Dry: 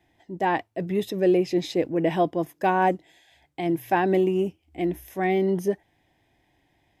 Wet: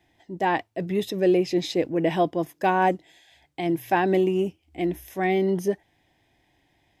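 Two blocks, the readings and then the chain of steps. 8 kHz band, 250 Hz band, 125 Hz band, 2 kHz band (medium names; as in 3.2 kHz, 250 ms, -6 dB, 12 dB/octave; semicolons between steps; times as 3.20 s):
no reading, 0.0 dB, 0.0 dB, +1.0 dB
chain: peaking EQ 4.7 kHz +3.5 dB 2 oct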